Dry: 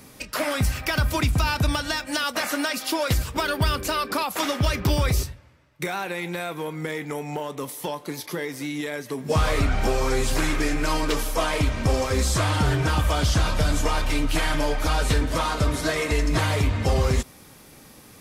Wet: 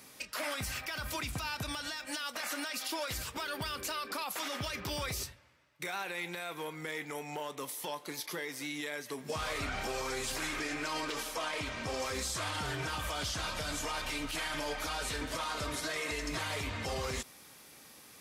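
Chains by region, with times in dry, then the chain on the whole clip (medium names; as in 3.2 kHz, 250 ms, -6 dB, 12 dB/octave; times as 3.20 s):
10.59–12.00 s: high-pass 74 Hz 6 dB/octave + treble shelf 9.8 kHz -9.5 dB
whole clip: low-pass 4 kHz 6 dB/octave; tilt EQ +3 dB/octave; peak limiter -20.5 dBFS; trim -6.5 dB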